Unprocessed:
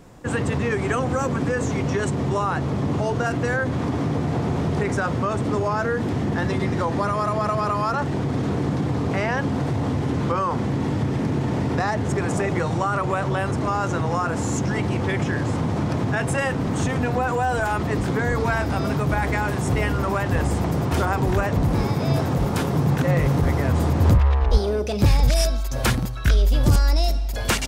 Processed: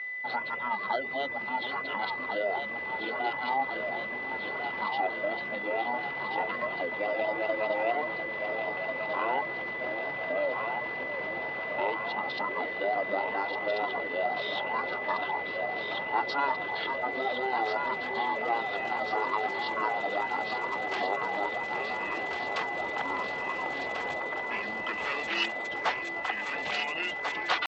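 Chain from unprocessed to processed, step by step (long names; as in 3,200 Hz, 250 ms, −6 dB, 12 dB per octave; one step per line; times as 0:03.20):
reverb reduction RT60 0.55 s
delay that swaps between a low-pass and a high-pass 696 ms, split 940 Hz, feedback 84%, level −3.5 dB
pitch shifter −11.5 semitones
steady tone 2,000 Hz −34 dBFS
flat-topped band-pass 1,600 Hz, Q 0.51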